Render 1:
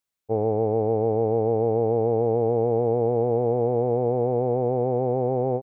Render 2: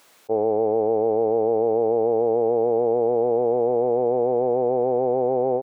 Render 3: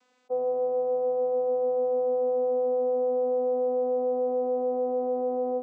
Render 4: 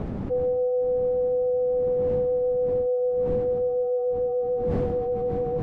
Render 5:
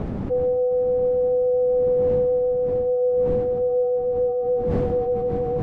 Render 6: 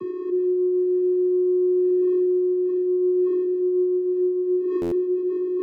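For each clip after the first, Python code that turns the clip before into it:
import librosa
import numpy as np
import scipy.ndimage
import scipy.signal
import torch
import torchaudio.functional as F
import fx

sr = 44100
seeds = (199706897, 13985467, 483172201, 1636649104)

y1 = scipy.signal.sosfilt(scipy.signal.butter(2, 410.0, 'highpass', fs=sr, output='sos'), x)
y1 = fx.tilt_eq(y1, sr, slope=-2.5)
y1 = fx.env_flatten(y1, sr, amount_pct=50)
y1 = y1 * 10.0 ** (1.0 / 20.0)
y2 = fx.low_shelf(y1, sr, hz=190.0, db=-11.5)
y2 = fx.vocoder(y2, sr, bands=16, carrier='saw', carrier_hz=251.0)
y2 = y2 * 10.0 ** (-2.5 / 20.0)
y3 = fx.sine_speech(y2, sr)
y3 = fx.dmg_wind(y3, sr, seeds[0], corner_hz=250.0, level_db=-39.0)
y3 = fx.env_flatten(y3, sr, amount_pct=70)
y4 = y3 + 10.0 ** (-16.0 / 20.0) * np.pad(y3, (int(710 * sr / 1000.0), 0))[:len(y3)]
y4 = y4 * 10.0 ** (3.0 / 20.0)
y5 = fx.vocoder(y4, sr, bands=16, carrier='square', carrier_hz=363.0)
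y5 = fx.buffer_glitch(y5, sr, at_s=(4.81,), block=512, repeats=8)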